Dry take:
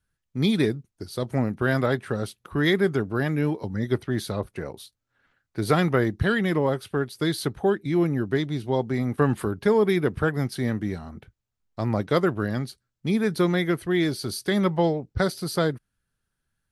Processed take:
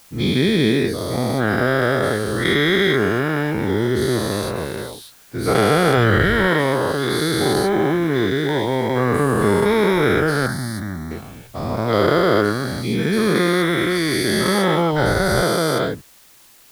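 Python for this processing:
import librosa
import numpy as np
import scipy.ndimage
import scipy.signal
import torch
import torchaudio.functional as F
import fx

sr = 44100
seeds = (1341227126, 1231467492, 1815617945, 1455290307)

y = fx.spec_dilate(x, sr, span_ms=480)
y = fx.quant_dither(y, sr, seeds[0], bits=8, dither='triangular')
y = fx.fixed_phaser(y, sr, hz=1100.0, stages=4, at=(10.46, 11.11))
y = y * 10.0 ** (-1.0 / 20.0)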